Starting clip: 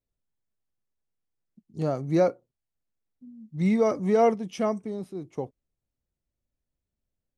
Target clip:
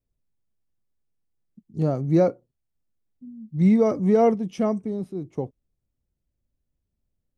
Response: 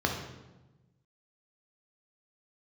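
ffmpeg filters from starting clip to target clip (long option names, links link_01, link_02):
-af "lowshelf=frequency=490:gain=10.5,volume=-3dB"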